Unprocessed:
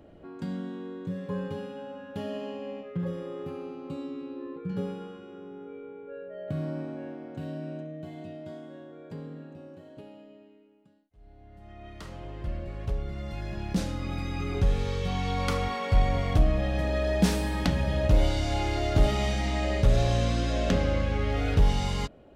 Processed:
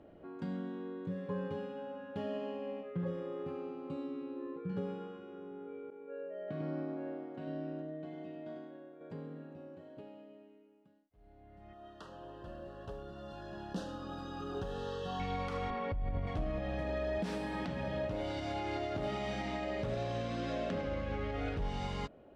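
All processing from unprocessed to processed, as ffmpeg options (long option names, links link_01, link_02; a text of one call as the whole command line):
ffmpeg -i in.wav -filter_complex "[0:a]asettb=1/sr,asplit=3[link_01][link_02][link_03];[link_01]atrim=end=5.904[link_04];[link_02]atrim=start=5.9:end=9.01,asetpts=PTS-STARTPTS,afade=type=in:duration=0.004:curve=qsin,afade=type=out:start_time=3.106:duration=0.004:curve=qsin,agate=range=-33dB:threshold=-41dB:ratio=3:release=100:detection=peak,highpass=200,lowpass=5800,aecho=1:1:97:0.531,atrim=end_sample=137151[link_05];[link_03]atrim=start=9.006[link_06];[link_04][link_05]acrossfade=duration=0.004:curve1=hsin:curve2=qsin[link_07];[link_07][link_06]acrossfade=duration=0.004:curve1=qsin:curve2=hsin,asettb=1/sr,asplit=3[link_08][link_09][link_10];[link_08]atrim=end=11.734[link_11];[link_09]atrim=start=11.73:end=15.2,asetpts=PTS-STARTPTS,afade=type=in:duration=0.004:curve=qsin,afade=type=out:start_time=3.466:duration=0.004:curve=qsin,asuperstop=centerf=2200:order=8:qfactor=2.6,lowshelf=frequency=170:gain=-12,acrusher=bits=7:mode=log:mix=0:aa=0.000001[link_12];[link_10]atrim=start=15.196[link_13];[link_11][link_12]acrossfade=duration=0.004:curve1=hsin:curve2=qsin[link_14];[link_14][link_13]acrossfade=duration=0.004:curve1=qsin:curve2=hsin,asettb=1/sr,asplit=3[link_15][link_16][link_17];[link_15]atrim=end=15.704[link_18];[link_16]atrim=start=15.7:end=16.27,asetpts=PTS-STARTPTS,afade=type=in:duration=0.004:curve=qsin,afade=type=out:start_time=0.566:duration=0.004:curve=qsin,lowpass=5400,aemphasis=mode=reproduction:type=bsi,acompressor=threshold=-19dB:ratio=12:attack=3.2:release=140:knee=1:detection=peak[link_19];[link_17]atrim=start=16.266[link_20];[link_18][link_19]acrossfade=duration=0.004:curve1=hsin:curve2=qsin[link_21];[link_21][link_20]acrossfade=duration=0.004:curve1=qsin:curve2=hsin,asettb=1/sr,asplit=3[link_22][link_23][link_24];[link_22]atrim=end=17.184[link_25];[link_23]atrim=start=17.18:end=20.86,asetpts=PTS-STARTPTS,afade=type=in:duration=0.004:curve=qsin,afade=type=out:start_time=3.676:duration=0.004:curve=qsin,highpass=100,bandreject=frequency=6600:width=25[link_26];[link_24]atrim=start=20.856[link_27];[link_25][link_26]acrossfade=duration=0.004:curve1=hsin:curve2=qsin[link_28];[link_28][link_27]acrossfade=duration=0.004:curve1=qsin:curve2=hsin,lowshelf=frequency=150:gain=-8.5,alimiter=level_in=1dB:limit=-24dB:level=0:latency=1:release=141,volume=-1dB,aemphasis=mode=reproduction:type=75fm,volume=-3dB" out.wav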